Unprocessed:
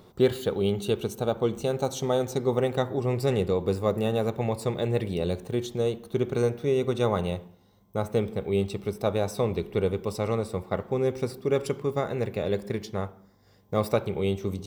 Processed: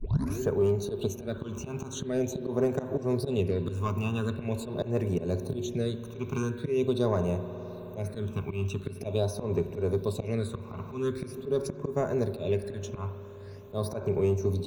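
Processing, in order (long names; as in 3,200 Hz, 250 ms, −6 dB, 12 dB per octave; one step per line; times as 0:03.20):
turntable start at the beginning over 0.41 s
EQ curve with evenly spaced ripples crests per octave 1.5, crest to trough 9 dB
volume swells 157 ms
soft clipping −16 dBFS, distortion −21 dB
all-pass phaser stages 8, 0.44 Hz, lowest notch 520–3,800 Hz
spring reverb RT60 3.2 s, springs 52 ms, chirp 45 ms, DRR 13 dB
multiband upward and downward compressor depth 40%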